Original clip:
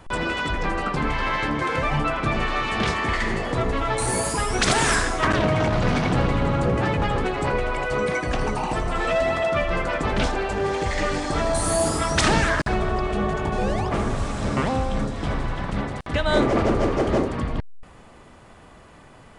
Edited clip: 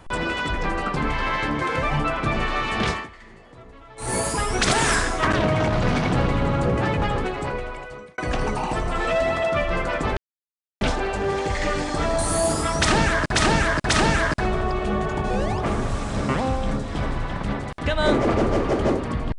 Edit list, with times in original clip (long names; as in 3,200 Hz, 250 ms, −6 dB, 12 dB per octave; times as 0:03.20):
0:02.90–0:04.15: duck −21.5 dB, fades 0.19 s
0:07.07–0:08.18: fade out
0:10.17: splice in silence 0.64 s
0:12.17–0:12.71: repeat, 3 plays